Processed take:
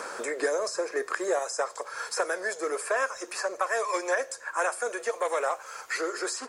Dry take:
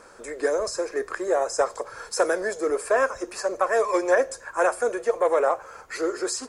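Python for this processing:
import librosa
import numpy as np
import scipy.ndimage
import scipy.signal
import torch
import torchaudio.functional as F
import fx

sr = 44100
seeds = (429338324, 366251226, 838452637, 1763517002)

y = fx.highpass(x, sr, hz=fx.steps((0.0, 560.0), (1.39, 1300.0)), slope=6)
y = fx.band_squash(y, sr, depth_pct=70)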